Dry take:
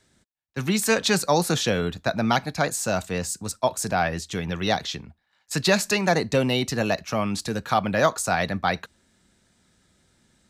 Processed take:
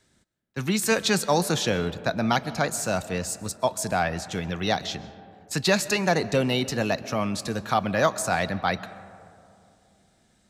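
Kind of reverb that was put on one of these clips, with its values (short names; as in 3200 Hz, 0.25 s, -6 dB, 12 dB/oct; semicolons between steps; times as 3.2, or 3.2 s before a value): digital reverb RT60 2.7 s, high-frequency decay 0.3×, pre-delay 90 ms, DRR 16 dB; gain -1.5 dB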